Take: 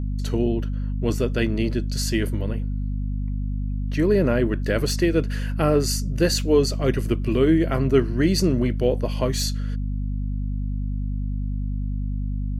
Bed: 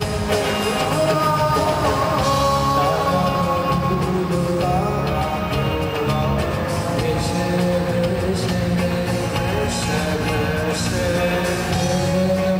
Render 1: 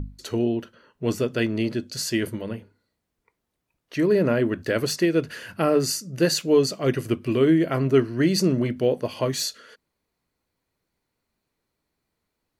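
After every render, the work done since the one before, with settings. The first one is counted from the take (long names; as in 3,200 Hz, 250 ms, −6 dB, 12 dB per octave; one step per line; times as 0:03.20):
mains-hum notches 50/100/150/200/250 Hz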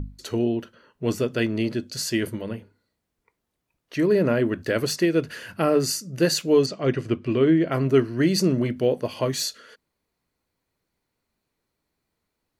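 0:06.66–0:07.72: high-frequency loss of the air 97 metres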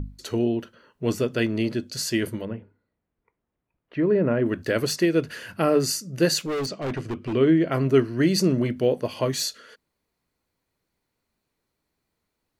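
0:02.45–0:04.46: high-frequency loss of the air 490 metres
0:06.44–0:07.33: hard clipping −25 dBFS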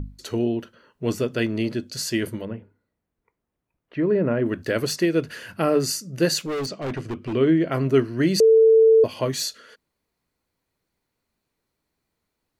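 0:08.40–0:09.04: beep over 446 Hz −10.5 dBFS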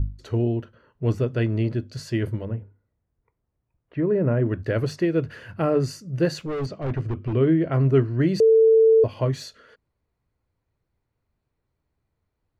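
low-pass filter 1,300 Hz 6 dB per octave
low shelf with overshoot 150 Hz +7.5 dB, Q 1.5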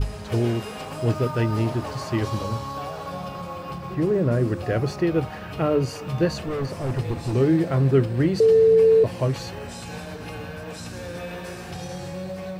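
mix in bed −14.5 dB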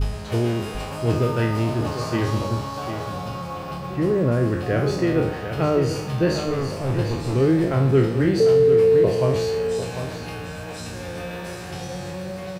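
peak hold with a decay on every bin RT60 0.67 s
single-tap delay 748 ms −9 dB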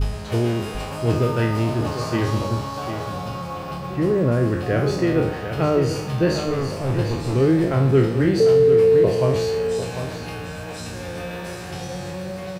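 level +1 dB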